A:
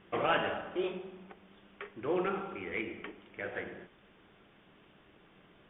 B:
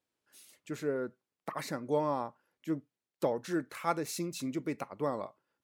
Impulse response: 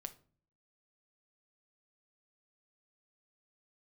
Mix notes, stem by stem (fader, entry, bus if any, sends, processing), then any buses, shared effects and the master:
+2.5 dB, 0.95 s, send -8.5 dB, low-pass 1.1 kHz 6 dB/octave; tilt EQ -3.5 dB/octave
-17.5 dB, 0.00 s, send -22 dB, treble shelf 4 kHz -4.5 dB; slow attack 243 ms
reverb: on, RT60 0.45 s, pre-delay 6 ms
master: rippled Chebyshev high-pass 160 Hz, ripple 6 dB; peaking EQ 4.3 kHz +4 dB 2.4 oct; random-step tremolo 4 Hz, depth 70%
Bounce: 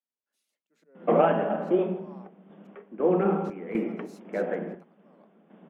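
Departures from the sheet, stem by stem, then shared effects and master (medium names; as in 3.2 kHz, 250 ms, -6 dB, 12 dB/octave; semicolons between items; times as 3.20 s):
stem A +2.5 dB -> +10.5 dB; stem B -17.5 dB -> -10.0 dB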